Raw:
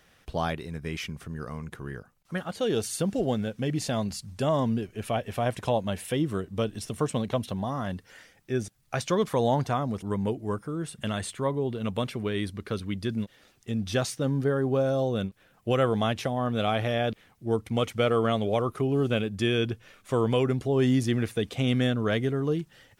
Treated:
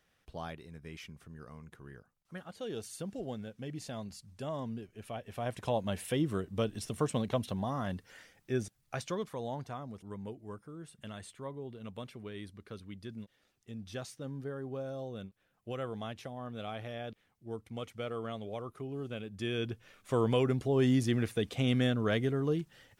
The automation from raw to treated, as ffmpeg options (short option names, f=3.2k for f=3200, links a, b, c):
-af "volume=6.5dB,afade=t=in:st=5.21:d=0.77:silence=0.354813,afade=t=out:st=8.53:d=0.8:silence=0.298538,afade=t=in:st=19.18:d=1.01:silence=0.298538"